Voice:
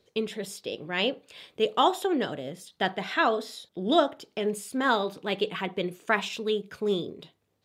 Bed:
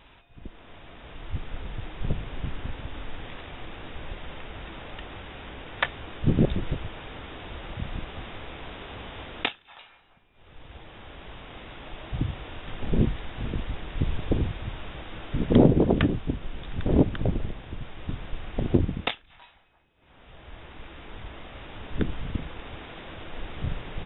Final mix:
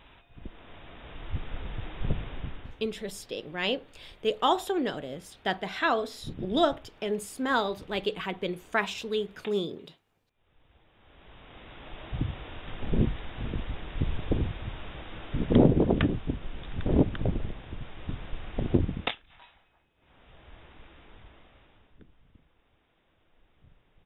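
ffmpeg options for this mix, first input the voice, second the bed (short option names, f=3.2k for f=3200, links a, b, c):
-filter_complex "[0:a]adelay=2650,volume=-2dB[a];[1:a]volume=13.5dB,afade=t=out:st=2.2:d=0.62:silence=0.158489,afade=t=in:st=10.95:d=1.08:silence=0.188365,afade=t=out:st=19.61:d=2.38:silence=0.0501187[b];[a][b]amix=inputs=2:normalize=0"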